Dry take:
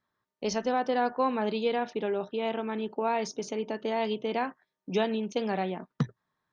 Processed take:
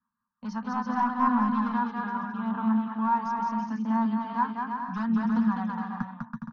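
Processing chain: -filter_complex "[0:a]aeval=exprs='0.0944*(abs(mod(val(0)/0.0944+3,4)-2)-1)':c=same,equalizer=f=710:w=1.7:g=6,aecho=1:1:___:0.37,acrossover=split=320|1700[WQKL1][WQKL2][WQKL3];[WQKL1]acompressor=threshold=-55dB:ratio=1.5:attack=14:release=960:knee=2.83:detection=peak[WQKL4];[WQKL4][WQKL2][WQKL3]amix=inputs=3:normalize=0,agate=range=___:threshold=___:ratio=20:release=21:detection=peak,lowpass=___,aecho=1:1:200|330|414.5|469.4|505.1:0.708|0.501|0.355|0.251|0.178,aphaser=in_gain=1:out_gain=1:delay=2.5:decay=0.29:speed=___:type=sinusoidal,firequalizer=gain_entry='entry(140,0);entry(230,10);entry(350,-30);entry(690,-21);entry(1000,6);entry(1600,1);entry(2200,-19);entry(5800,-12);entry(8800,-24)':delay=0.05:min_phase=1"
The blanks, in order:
4.2, -8dB, -49dB, 5000, 0.76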